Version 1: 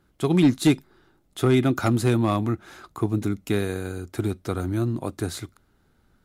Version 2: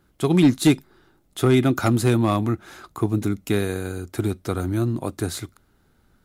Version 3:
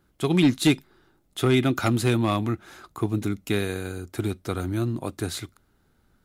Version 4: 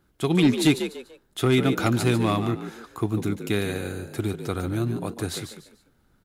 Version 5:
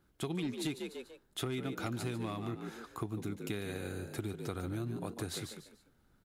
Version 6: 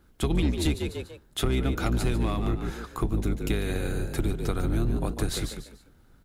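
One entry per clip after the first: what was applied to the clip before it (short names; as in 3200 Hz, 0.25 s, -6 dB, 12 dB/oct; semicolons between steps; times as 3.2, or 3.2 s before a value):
high shelf 8500 Hz +4 dB; gain +2 dB
dynamic EQ 2900 Hz, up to +6 dB, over -44 dBFS, Q 0.98; gain -3.5 dB
frequency-shifting echo 0.146 s, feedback 30%, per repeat +57 Hz, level -9.5 dB
compressor 6:1, threshold -29 dBFS, peak gain reduction 14 dB; gain -5.5 dB
octaver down 2 oct, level +4 dB; gain +8.5 dB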